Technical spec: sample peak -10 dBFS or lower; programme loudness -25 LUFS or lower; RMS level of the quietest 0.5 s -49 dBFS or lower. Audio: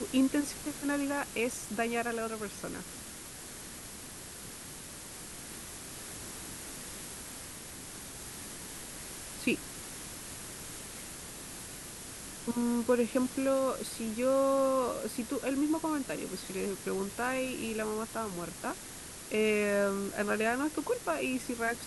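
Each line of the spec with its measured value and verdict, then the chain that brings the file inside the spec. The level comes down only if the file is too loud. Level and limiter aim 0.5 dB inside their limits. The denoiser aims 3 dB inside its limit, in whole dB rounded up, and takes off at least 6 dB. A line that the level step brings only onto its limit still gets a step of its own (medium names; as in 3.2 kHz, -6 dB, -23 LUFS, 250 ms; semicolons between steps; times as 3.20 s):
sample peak -16.5 dBFS: pass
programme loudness -34.5 LUFS: pass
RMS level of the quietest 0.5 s -46 dBFS: fail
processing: noise reduction 6 dB, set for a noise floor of -46 dBFS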